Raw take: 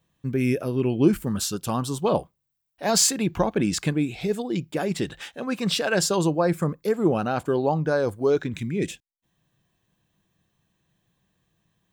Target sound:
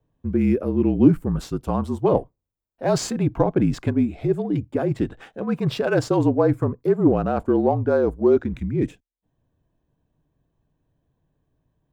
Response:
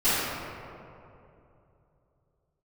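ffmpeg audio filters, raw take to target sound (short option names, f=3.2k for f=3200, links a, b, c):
-filter_complex "[0:a]equalizer=f=140:t=o:w=0.83:g=-6,afreqshift=-42,asplit=2[a][b];[b]adynamicsmooth=sensitivity=5.5:basefreq=1.3k,volume=1.5dB[c];[a][c]amix=inputs=2:normalize=0,tiltshelf=f=1.5k:g=7.5,volume=-8.5dB"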